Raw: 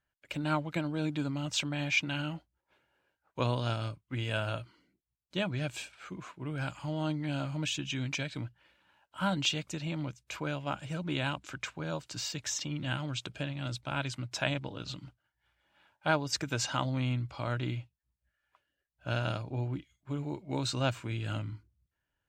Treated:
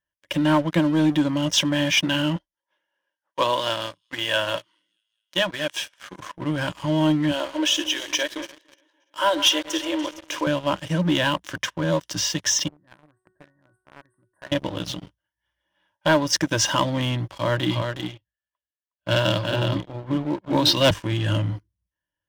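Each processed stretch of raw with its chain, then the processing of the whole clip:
0:02.36–0:06.20: meter weighting curve A + delay with a high-pass on its return 211 ms, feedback 68%, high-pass 5,500 Hz, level −17 dB
0:07.31–0:10.47: feedback delay that plays each chunk backwards 145 ms, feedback 63%, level −13 dB + linear-phase brick-wall high-pass 290 Hz
0:12.68–0:14.52: linear-phase brick-wall band-stop 2,000–8,000 Hz + tuned comb filter 370 Hz, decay 0.59 s, mix 90% + one half of a high-frequency compander decoder only
0:17.34–0:20.91: high shelf with overshoot 5,700 Hz −8.5 dB, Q 3 + single-tap delay 364 ms −4 dB + multiband upward and downward expander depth 70%
whole clip: EQ curve with evenly spaced ripples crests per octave 1.2, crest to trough 11 dB; leveller curve on the samples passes 3; low-shelf EQ 82 Hz −5 dB

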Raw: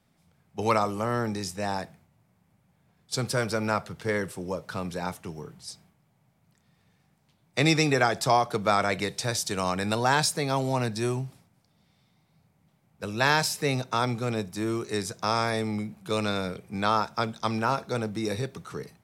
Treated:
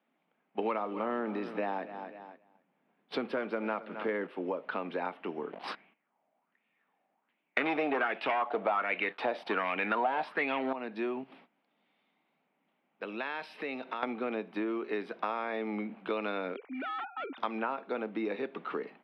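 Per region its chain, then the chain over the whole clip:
0:00.59–0:04.27: one scale factor per block 5 bits + low-shelf EQ 390 Hz +6 dB + repeating echo 263 ms, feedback 38%, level −17.5 dB
0:05.52–0:10.73: leveller curve on the samples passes 3 + auto-filter bell 1.3 Hz 630–2,600 Hz +13 dB
0:11.23–0:14.03: downward compressor 3 to 1, threshold −43 dBFS + high-shelf EQ 2,600 Hz +7.5 dB
0:16.56–0:17.38: three sine waves on the formant tracks + gain into a clipping stage and back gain 31 dB + downward compressor 4 to 1, threshold −44 dBFS
whole clip: noise gate −55 dBFS, range −11 dB; elliptic band-pass filter 250–2,900 Hz, stop band 40 dB; downward compressor 5 to 1, threshold −38 dBFS; level +6.5 dB

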